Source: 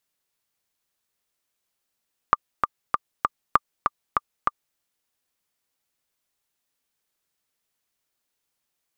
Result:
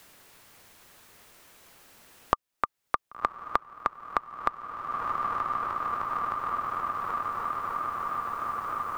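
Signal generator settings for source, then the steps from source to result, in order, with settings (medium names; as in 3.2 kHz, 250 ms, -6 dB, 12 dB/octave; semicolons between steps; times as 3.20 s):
metronome 196 bpm, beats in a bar 4, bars 2, 1.19 kHz, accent 4.5 dB -2 dBFS
echo that smears into a reverb 1063 ms, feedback 60%, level -15 dB; three bands compressed up and down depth 100%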